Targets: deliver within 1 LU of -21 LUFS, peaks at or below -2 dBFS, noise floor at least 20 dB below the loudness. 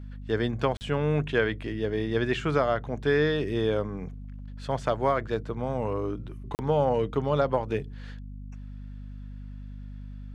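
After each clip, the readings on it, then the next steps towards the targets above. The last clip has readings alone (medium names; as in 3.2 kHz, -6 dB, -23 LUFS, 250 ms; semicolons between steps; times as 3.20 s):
dropouts 2; longest dropout 39 ms; hum 50 Hz; highest harmonic 250 Hz; hum level -37 dBFS; loudness -28.0 LUFS; peak level -9.0 dBFS; loudness target -21.0 LUFS
-> interpolate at 0.77/6.55 s, 39 ms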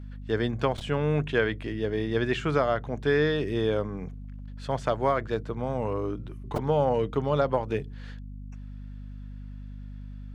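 dropouts 0; hum 50 Hz; highest harmonic 250 Hz; hum level -37 dBFS
-> hum notches 50/100/150/200/250 Hz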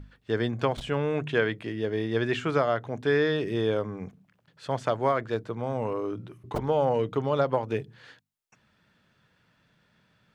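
hum not found; loudness -28.0 LUFS; peak level -9.5 dBFS; loudness target -21.0 LUFS
-> trim +7 dB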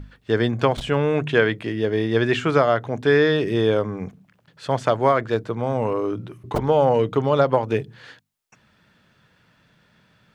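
loudness -21.0 LUFS; peak level -2.5 dBFS; noise floor -61 dBFS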